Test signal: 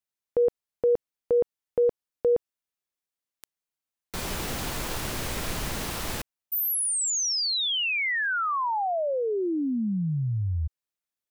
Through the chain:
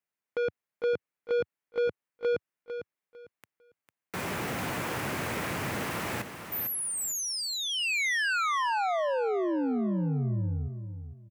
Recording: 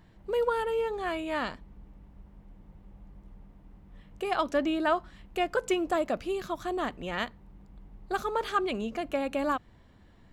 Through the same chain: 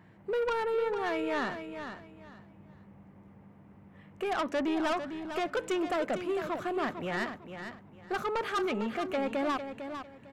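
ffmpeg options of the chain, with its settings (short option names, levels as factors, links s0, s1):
-af "highpass=f=98:w=0.5412,highpass=f=98:w=1.3066,highshelf=f=2900:t=q:w=1.5:g=-7,asoftclip=type=tanh:threshold=0.0355,aecho=1:1:451|902|1353:0.355|0.0852|0.0204,volume=1.33"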